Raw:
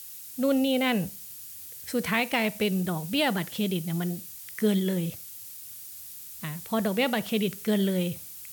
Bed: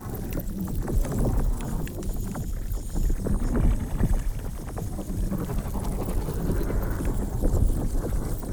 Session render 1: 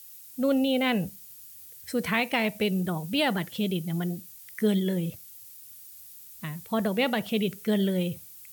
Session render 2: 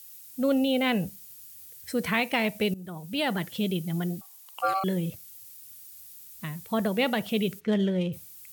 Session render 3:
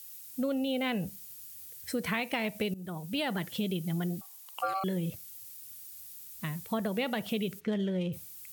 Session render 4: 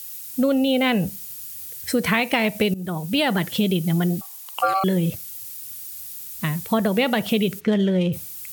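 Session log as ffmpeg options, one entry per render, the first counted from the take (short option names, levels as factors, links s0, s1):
-af "afftdn=nr=7:nf=-43"
-filter_complex "[0:a]asettb=1/sr,asplit=3[s0][s1][s2];[s0]atrim=end=4.214[s3];[s1]atrim=start=4.21:end=4.84,asetpts=PTS-STARTPTS,afade=t=in:d=0.004:c=qsin,afade=t=out:st=0.626:d=0.004:c=qsin,aeval=exprs='val(0)*sin(2*PI*960*n/s)':c=same[s4];[s2]atrim=start=4.836[s5];[s3][s4]acrossfade=d=0.004:c1=hsin:c2=qsin[s6];[s6][s5]acrossfade=d=0.004:c1=qsin:c2=hsin,asplit=3[s7][s8][s9];[s7]afade=t=out:st=7.59:d=0.02[s10];[s8]adynamicsmooth=sensitivity=4.5:basefreq=2800,afade=t=in:st=7.59:d=0.02,afade=t=out:st=8.12:d=0.02[s11];[s9]afade=t=in:st=8.12:d=0.02[s12];[s10][s11][s12]amix=inputs=3:normalize=0,asplit=2[s13][s14];[s13]atrim=end=2.74,asetpts=PTS-STARTPTS,afade=t=out:st=2.736:d=0.004:c=hsin:silence=0.133352[s15];[s14]atrim=start=2.74,asetpts=PTS-STARTPTS,afade=t=in:d=0.7:silence=0.133352[s16];[s15][s16]concat=n=2:v=0:a=1"
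-af "acompressor=threshold=0.0355:ratio=4"
-af "volume=3.76"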